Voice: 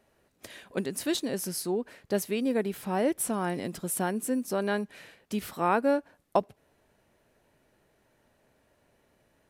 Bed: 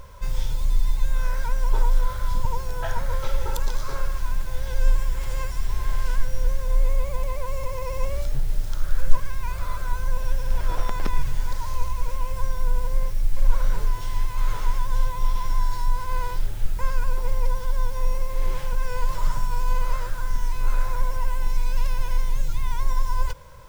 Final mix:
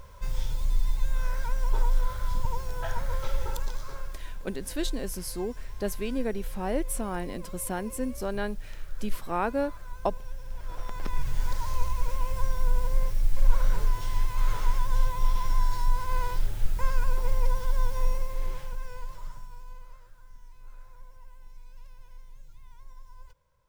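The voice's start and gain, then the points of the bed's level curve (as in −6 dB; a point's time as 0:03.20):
3.70 s, −3.0 dB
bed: 0:03.43 −4.5 dB
0:04.38 −14.5 dB
0:10.57 −14.5 dB
0:11.44 −2 dB
0:18.02 −2 dB
0:20.01 −25.5 dB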